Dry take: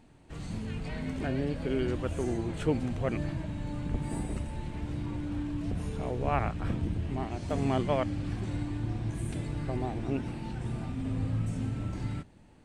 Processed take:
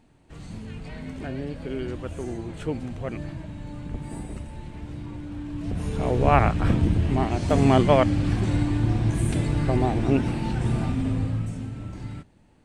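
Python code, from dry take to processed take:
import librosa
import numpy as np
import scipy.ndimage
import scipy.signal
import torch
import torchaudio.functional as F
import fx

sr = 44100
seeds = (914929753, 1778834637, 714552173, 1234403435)

y = fx.gain(x, sr, db=fx.line((5.39, -1.0), (6.16, 10.5), (10.89, 10.5), (11.68, -1.0)))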